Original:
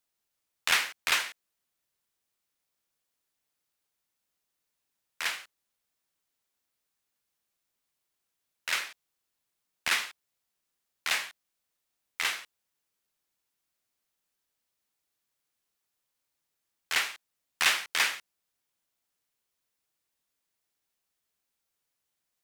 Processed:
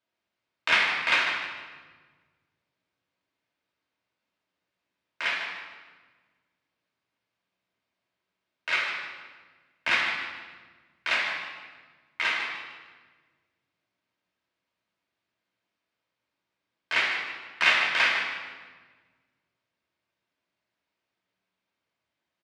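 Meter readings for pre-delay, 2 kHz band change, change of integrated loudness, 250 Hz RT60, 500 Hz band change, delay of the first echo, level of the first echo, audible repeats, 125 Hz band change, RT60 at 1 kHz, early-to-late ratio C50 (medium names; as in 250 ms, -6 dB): 3 ms, +6.0 dB, +3.0 dB, 1.9 s, +7.5 dB, 151 ms, -9.0 dB, 1, no reading, 1.3 s, 2.0 dB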